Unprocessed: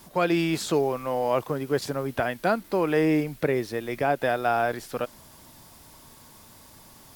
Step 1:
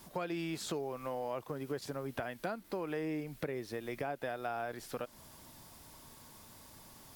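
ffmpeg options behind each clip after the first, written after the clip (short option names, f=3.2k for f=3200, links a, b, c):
-af "acompressor=threshold=-31dB:ratio=4,volume=-5dB"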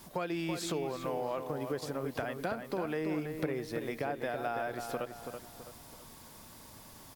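-filter_complex "[0:a]asplit=2[a][b];[b]adelay=330,lowpass=f=3.1k:p=1,volume=-6.5dB,asplit=2[c][d];[d]adelay=330,lowpass=f=3.1k:p=1,volume=0.41,asplit=2[e][f];[f]adelay=330,lowpass=f=3.1k:p=1,volume=0.41,asplit=2[g][h];[h]adelay=330,lowpass=f=3.1k:p=1,volume=0.41,asplit=2[i][j];[j]adelay=330,lowpass=f=3.1k:p=1,volume=0.41[k];[a][c][e][g][i][k]amix=inputs=6:normalize=0,volume=2.5dB"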